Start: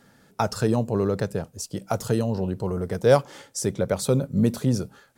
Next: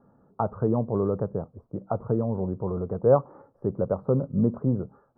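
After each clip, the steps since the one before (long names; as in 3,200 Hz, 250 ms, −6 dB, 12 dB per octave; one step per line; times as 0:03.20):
elliptic low-pass filter 1,200 Hz, stop band 60 dB
level −1.5 dB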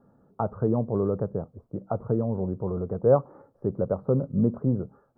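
parametric band 1,000 Hz −3.5 dB 0.73 octaves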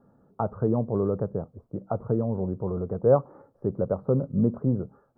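no processing that can be heard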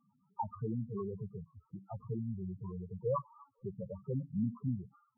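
low shelf with overshoot 790 Hz −7.5 dB, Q 3
delay with a high-pass on its return 255 ms, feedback 49%, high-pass 1,500 Hz, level −16 dB
spectral peaks only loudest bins 4
level −1.5 dB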